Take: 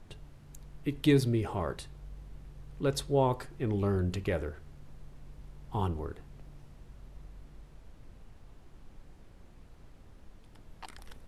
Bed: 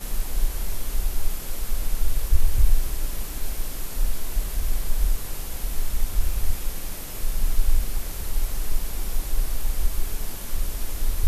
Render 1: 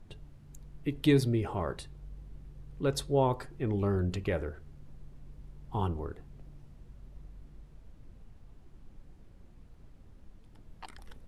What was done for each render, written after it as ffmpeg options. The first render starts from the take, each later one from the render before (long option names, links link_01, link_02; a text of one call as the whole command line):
ffmpeg -i in.wav -af "afftdn=noise_reduction=6:noise_floor=-55" out.wav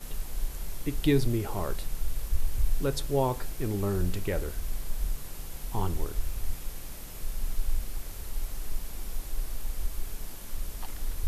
ffmpeg -i in.wav -i bed.wav -filter_complex "[1:a]volume=-8.5dB[link_01];[0:a][link_01]amix=inputs=2:normalize=0" out.wav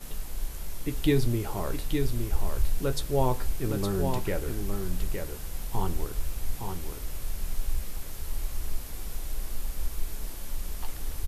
ffmpeg -i in.wav -filter_complex "[0:a]asplit=2[link_01][link_02];[link_02]adelay=16,volume=-11dB[link_03];[link_01][link_03]amix=inputs=2:normalize=0,asplit=2[link_04][link_05];[link_05]aecho=0:1:864:0.531[link_06];[link_04][link_06]amix=inputs=2:normalize=0" out.wav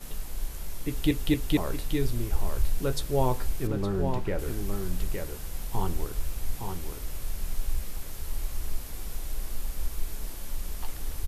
ffmpeg -i in.wav -filter_complex "[0:a]asettb=1/sr,asplit=3[link_01][link_02][link_03];[link_01]atrim=end=3.674[link_04];[link_02]atrim=start=3.67:end=4.39,asetpts=PTS-STARTPTS,afade=type=in:duration=0.004:curve=qsin,afade=type=out:start_time=0.716:duration=0.004:curve=qsin,lowpass=frequency=2200:poles=1[link_05];[link_03]atrim=start=4.386[link_06];[link_04][link_05]acrossfade=duration=0.004:curve1=hsin:curve2=qsin[link_07];[link_07][link_06]acrossfade=duration=0.004:curve1=qsin:curve2=hsin,asplit=4[link_08][link_09][link_10][link_11];[link_08]atrim=end=1.112[link_12];[link_09]atrim=start=0.878:end=1.112[link_13];[link_10]atrim=start=0.878:end=1.112[link_14];[link_11]atrim=start=1.568[link_15];[link_12][link_13]acrossfade=duration=0.004:curve1=hsin:curve2=hsin[link_16];[link_16][link_14]acrossfade=duration=0.004:curve1=hsin:curve2=hsin[link_17];[link_17][link_15]acrossfade=duration=0.004:curve1=hsin:curve2=hsin" out.wav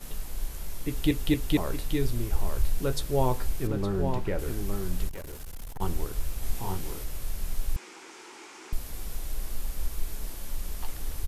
ffmpeg -i in.wav -filter_complex "[0:a]asplit=3[link_01][link_02][link_03];[link_01]afade=type=out:start_time=5.08:duration=0.02[link_04];[link_02]aeval=exprs='(tanh(50.1*val(0)+0.25)-tanh(0.25))/50.1':channel_layout=same,afade=type=in:start_time=5.08:duration=0.02,afade=type=out:start_time=5.8:duration=0.02[link_05];[link_03]afade=type=in:start_time=5.8:duration=0.02[link_06];[link_04][link_05][link_06]amix=inputs=3:normalize=0,asettb=1/sr,asplit=3[link_07][link_08][link_09];[link_07]atrim=end=6.394[link_10];[link_08]atrim=start=6.39:end=7.04,asetpts=PTS-STARTPTS,afade=type=in:duration=0.004:curve=qsin,afade=type=out:start_time=0.646:duration=0.004:curve=qsin,asplit=2[link_11][link_12];[link_12]adelay=32,volume=-2.5dB[link_13];[link_11][link_13]amix=inputs=2:normalize=0,atrim=end_sample=28665[link_14];[link_09]atrim=start=7.036[link_15];[link_10][link_14]acrossfade=duration=0.004:curve1=hsin:curve2=qsin[link_16];[link_16][link_15]acrossfade=duration=0.004:curve1=qsin:curve2=hsin,asettb=1/sr,asplit=3[link_17][link_18][link_19];[link_17]atrim=end=7.764[link_20];[link_18]atrim=start=7.76:end=8.73,asetpts=PTS-STARTPTS,afade=type=in:duration=0.004:curve=qsin,afade=type=out:start_time=0.966:duration=0.004:curve=qsin,highpass=frequency=290:width=0.5412,highpass=frequency=290:width=1.3066,equalizer=frequency=350:width_type=q:width=4:gain=9,equalizer=frequency=600:width_type=q:width=4:gain=-10,equalizer=frequency=900:width_type=q:width=4:gain=7,equalizer=frequency=1400:width_type=q:width=4:gain=5,equalizer=frequency=2300:width_type=q:width=4:gain=6,equalizer=frequency=4100:width_type=q:width=4:gain=-4,lowpass=frequency=7300:width=0.5412,lowpass=frequency=7300:width=1.3066[link_21];[link_19]atrim=start=8.726[link_22];[link_20][link_21]acrossfade=duration=0.004:curve1=hsin:curve2=qsin[link_23];[link_23][link_22]acrossfade=duration=0.004:curve1=qsin:curve2=hsin" out.wav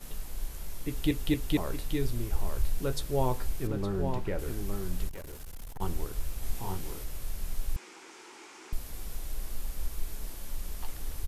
ffmpeg -i in.wav -af "volume=-3dB" out.wav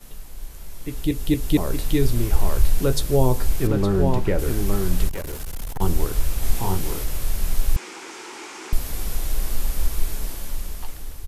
ffmpeg -i in.wav -filter_complex "[0:a]acrossover=split=560|4100[link_01][link_02][link_03];[link_02]alimiter=level_in=9.5dB:limit=-24dB:level=0:latency=1:release=234,volume=-9.5dB[link_04];[link_01][link_04][link_03]amix=inputs=3:normalize=0,dynaudnorm=framelen=370:gausssize=7:maxgain=12.5dB" out.wav